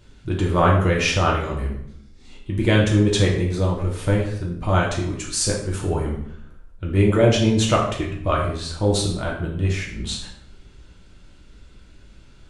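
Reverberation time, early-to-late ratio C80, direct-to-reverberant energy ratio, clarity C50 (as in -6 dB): 0.65 s, 8.5 dB, -2.5 dB, 5.0 dB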